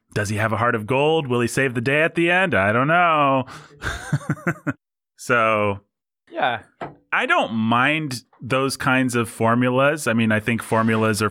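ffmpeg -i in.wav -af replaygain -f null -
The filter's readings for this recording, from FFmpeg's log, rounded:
track_gain = +1.1 dB
track_peak = 0.357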